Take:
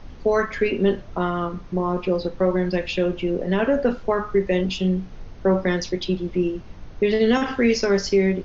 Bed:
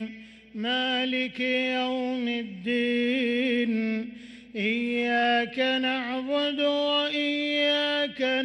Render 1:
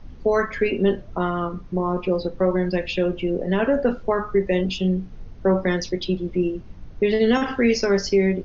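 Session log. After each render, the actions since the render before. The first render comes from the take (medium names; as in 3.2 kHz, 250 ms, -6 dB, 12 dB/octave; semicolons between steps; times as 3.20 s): noise reduction 7 dB, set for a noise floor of -40 dBFS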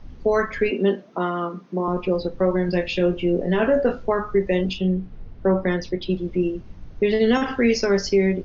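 0.71–1.88 s: steep high-pass 180 Hz; 2.66–4.06 s: doubling 23 ms -6 dB; 4.73–6.10 s: distance through air 160 m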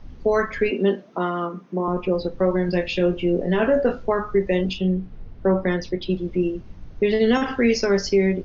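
1.46–2.18 s: peaking EQ 4.4 kHz -6 dB 0.63 oct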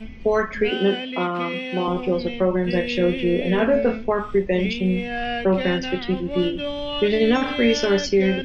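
add bed -3.5 dB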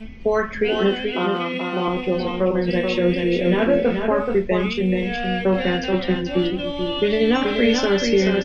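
delay 430 ms -5 dB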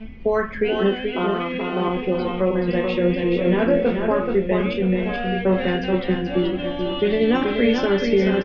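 distance through air 220 m; on a send: delay 973 ms -11.5 dB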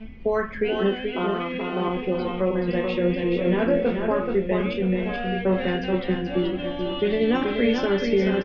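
trim -3 dB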